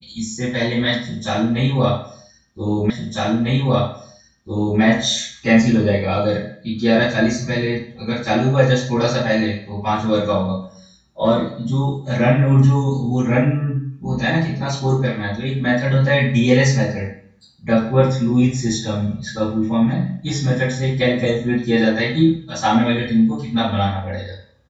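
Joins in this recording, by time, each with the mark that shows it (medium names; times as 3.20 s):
2.90 s: repeat of the last 1.9 s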